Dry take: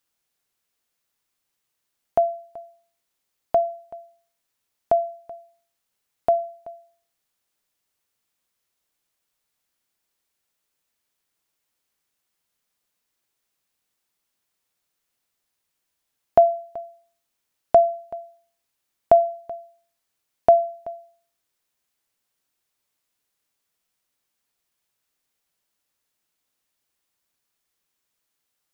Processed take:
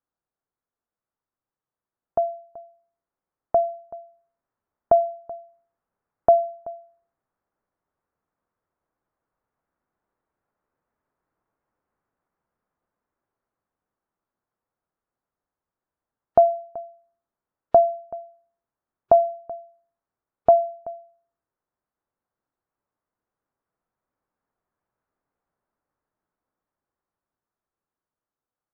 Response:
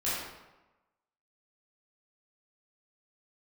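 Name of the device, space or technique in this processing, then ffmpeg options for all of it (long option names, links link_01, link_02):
action camera in a waterproof case: -af "lowpass=frequency=1400:width=0.5412,lowpass=frequency=1400:width=1.3066,dynaudnorm=framelen=610:gausssize=13:maxgain=14.5dB,volume=-4.5dB" -ar 44100 -c:a aac -b:a 64k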